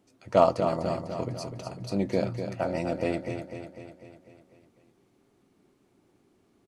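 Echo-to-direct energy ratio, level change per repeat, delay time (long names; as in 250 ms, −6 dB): −6.5 dB, −5.0 dB, 249 ms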